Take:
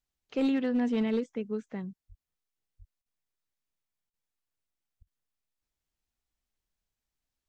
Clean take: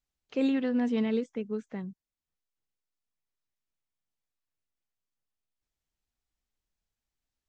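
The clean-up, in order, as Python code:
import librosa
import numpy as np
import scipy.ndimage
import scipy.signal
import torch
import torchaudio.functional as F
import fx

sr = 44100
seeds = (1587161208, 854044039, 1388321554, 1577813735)

y = fx.fix_declip(x, sr, threshold_db=-22.0)
y = fx.highpass(y, sr, hz=140.0, slope=24, at=(2.08, 2.2), fade=0.02)
y = fx.highpass(y, sr, hz=140.0, slope=24, at=(2.78, 2.9), fade=0.02)
y = fx.highpass(y, sr, hz=140.0, slope=24, at=(5.0, 5.12), fade=0.02)
y = fx.fix_interpolate(y, sr, at_s=(3.02, 4.1, 5.03), length_ms=37.0)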